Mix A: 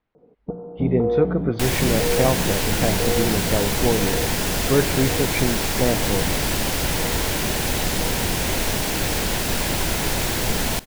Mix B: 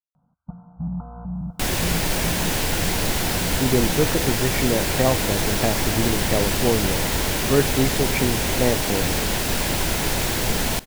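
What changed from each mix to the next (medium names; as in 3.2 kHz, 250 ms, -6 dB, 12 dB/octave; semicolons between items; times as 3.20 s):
speech: entry +2.80 s; first sound: add Chebyshev band-stop 160–1000 Hz, order 2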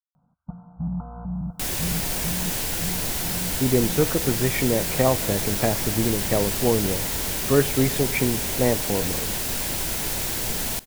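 second sound -8.0 dB; master: add treble shelf 5.7 kHz +10 dB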